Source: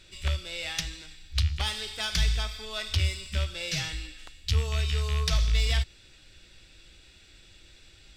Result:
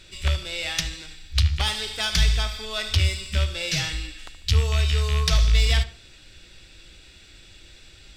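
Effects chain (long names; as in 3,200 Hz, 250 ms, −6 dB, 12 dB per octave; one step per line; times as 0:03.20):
tape delay 73 ms, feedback 37%, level −12 dB, low-pass 2,300 Hz
level +5.5 dB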